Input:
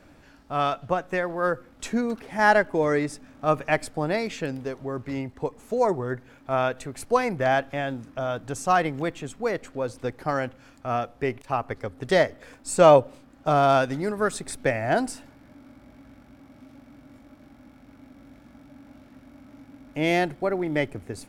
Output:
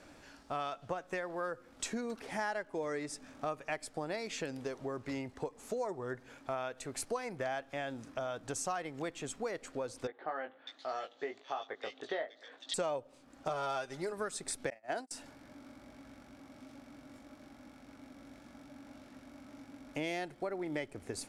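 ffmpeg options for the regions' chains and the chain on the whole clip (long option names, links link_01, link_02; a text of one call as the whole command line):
ffmpeg -i in.wav -filter_complex "[0:a]asettb=1/sr,asplit=3[link_01][link_02][link_03];[link_01]atrim=end=10.074[link_04];[link_02]atrim=start=10.07:end=12.74,asetpts=PTS-STARTPTS,afade=type=in:duration=0.004:curve=qsin,afade=type=out:start_time=2.666:duration=0.004:curve=qsin,highpass=490,equalizer=frequency=540:width_type=q:width=4:gain=-4,equalizer=frequency=970:width_type=q:width=4:gain=-7,equalizer=frequency=1400:width_type=q:width=4:gain=-5,equalizer=frequency=2400:width_type=q:width=4:gain=-8,equalizer=frequency=3600:width_type=q:width=4:gain=9,equalizer=frequency=5200:width_type=q:width=4:gain=-7,lowpass=frequency=5700:width=0.5412,lowpass=frequency=5700:width=1.3066,asplit=2[link_05][link_06];[link_06]adelay=19,volume=-5dB[link_07];[link_05][link_07]amix=inputs=2:normalize=0,atrim=end_sample=117747,acrossover=split=2500[link_08][link_09];[link_09]adelay=600[link_10];[link_08][link_10]amix=inputs=2:normalize=0,atrim=end_sample=117747[link_11];[link_03]atrim=start=12.736[link_12];[link_04][link_11]acrossfade=duration=0.004:curve1=hsin:curve2=qsin[link_13];[link_13][link_12]acrossfade=duration=0.004:curve1=qsin:curve2=hsin,asettb=1/sr,asplit=3[link_14][link_15][link_16];[link_14]atrim=end=13.494[link_17];[link_15]atrim=start=13.49:end=14.13,asetpts=PTS-STARTPTS,afade=type=in:duration=0.004:curve=qsin,afade=type=out:start_time=0.636:duration=0.004:curve=qsin,equalizer=frequency=220:width_type=o:width=0.34:gain=-15,aecho=1:1:5:0.66,atrim=end_sample=28224[link_18];[link_16]atrim=start=14.126[link_19];[link_17][link_18]acrossfade=duration=0.004:curve1=hsin:curve2=qsin[link_20];[link_20][link_19]acrossfade=duration=0.004:curve1=qsin:curve2=hsin,asettb=1/sr,asplit=3[link_21][link_22][link_23];[link_21]atrim=end=14.704[link_24];[link_22]atrim=start=14.7:end=15.11,asetpts=PTS-STARTPTS,afade=type=in:duration=0.004:curve=qsin,afade=type=out:start_time=0.406:duration=0.004:curve=qsin,highpass=230,agate=range=-35dB:threshold=-27dB:ratio=16:release=100:detection=peak[link_25];[link_23]atrim=start=15.106[link_26];[link_24][link_25]acrossfade=duration=0.004:curve1=hsin:curve2=qsin[link_27];[link_27][link_26]acrossfade=duration=0.004:curve1=qsin:curve2=hsin,lowpass=10000,bass=frequency=250:gain=-7,treble=frequency=4000:gain=6,acompressor=threshold=-34dB:ratio=5,volume=-1.5dB" out.wav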